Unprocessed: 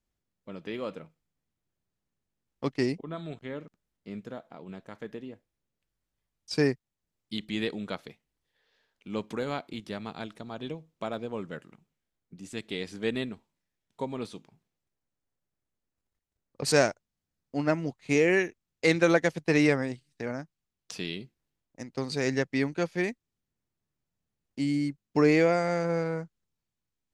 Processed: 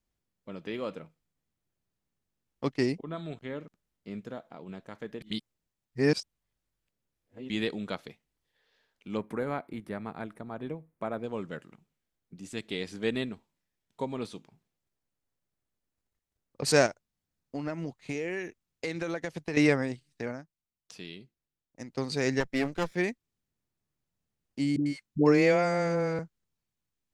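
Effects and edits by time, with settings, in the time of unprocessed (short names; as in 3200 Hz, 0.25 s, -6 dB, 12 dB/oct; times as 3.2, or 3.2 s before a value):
5.21–7.5 reverse
9.17–11.24 band shelf 4500 Hz -13.5 dB
16.86–19.57 compressor, threshold -30 dBFS
20.23–21.88 dip -8.5 dB, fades 0.19 s
22.4–22.95 minimum comb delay 0.55 ms
24.76–26.19 dispersion highs, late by 0.1 s, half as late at 520 Hz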